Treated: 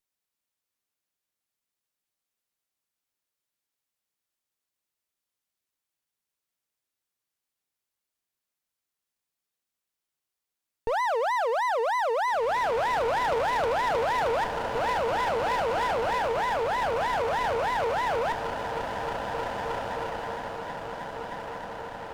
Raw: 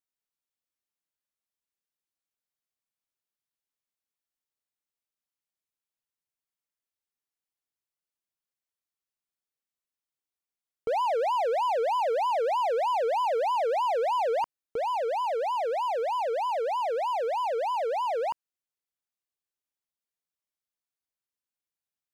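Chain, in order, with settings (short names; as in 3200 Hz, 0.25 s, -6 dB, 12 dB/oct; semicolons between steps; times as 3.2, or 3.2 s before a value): diffused feedback echo 1.905 s, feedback 52%, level -7.5 dB; half-wave rectifier; added harmonics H 4 -19 dB, 5 -25 dB, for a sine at -15.5 dBFS; gain +7 dB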